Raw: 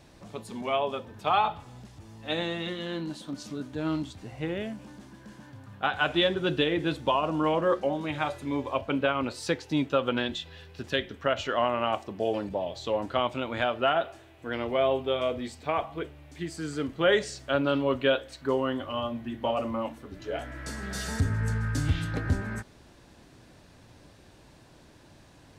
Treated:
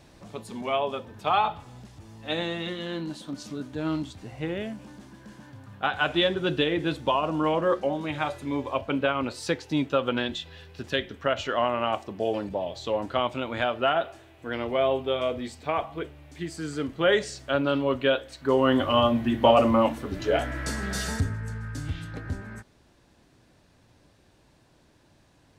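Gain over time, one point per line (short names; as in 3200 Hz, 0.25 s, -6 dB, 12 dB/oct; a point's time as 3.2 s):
18.39 s +1 dB
18.79 s +10.5 dB
20.21 s +10.5 dB
21.11 s +3 dB
21.42 s -6 dB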